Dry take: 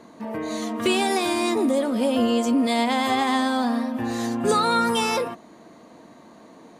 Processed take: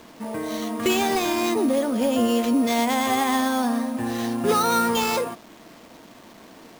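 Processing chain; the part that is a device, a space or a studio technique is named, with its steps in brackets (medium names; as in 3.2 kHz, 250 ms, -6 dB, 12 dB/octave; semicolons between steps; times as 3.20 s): early 8-bit sampler (sample-rate reducer 10 kHz, jitter 0%; bit crusher 8-bit)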